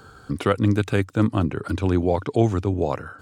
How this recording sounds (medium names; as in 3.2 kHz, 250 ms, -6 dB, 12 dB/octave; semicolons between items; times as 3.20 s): noise floor -48 dBFS; spectral tilt -6.5 dB/octave